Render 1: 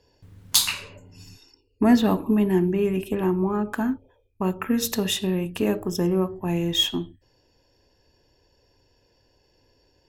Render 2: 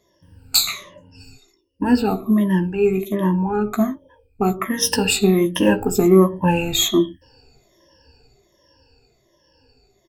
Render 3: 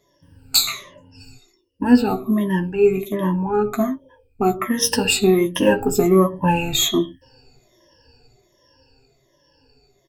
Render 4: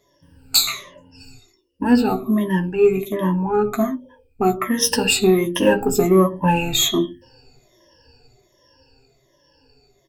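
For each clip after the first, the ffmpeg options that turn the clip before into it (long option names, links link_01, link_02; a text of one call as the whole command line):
ffmpeg -i in.wav -filter_complex "[0:a]afftfilt=real='re*pow(10,22/40*sin(2*PI*(1.2*log(max(b,1)*sr/1024/100)/log(2)-(-1.3)*(pts-256)/sr)))':imag='im*pow(10,22/40*sin(2*PI*(1.2*log(max(b,1)*sr/1024/100)/log(2)-(-1.3)*(pts-256)/sr)))':win_size=1024:overlap=0.75,dynaudnorm=framelen=240:gausssize=21:maxgain=11.5dB,asplit=2[link_01][link_02];[link_02]adelay=15,volume=-8dB[link_03];[link_01][link_03]amix=inputs=2:normalize=0,volume=-1dB" out.wav
ffmpeg -i in.wav -af "flanger=delay=7:depth=1.3:regen=44:speed=0.31:shape=sinusoidal,volume=4dB" out.wav
ffmpeg -i in.wav -filter_complex "[0:a]bandreject=frequency=50:width_type=h:width=6,bandreject=frequency=100:width_type=h:width=6,bandreject=frequency=150:width_type=h:width=6,bandreject=frequency=200:width_type=h:width=6,bandreject=frequency=250:width_type=h:width=6,bandreject=frequency=300:width_type=h:width=6,bandreject=frequency=350:width_type=h:width=6,asplit=2[link_01][link_02];[link_02]asoftclip=type=tanh:threshold=-12.5dB,volume=-11dB[link_03];[link_01][link_03]amix=inputs=2:normalize=0,volume=-1dB" out.wav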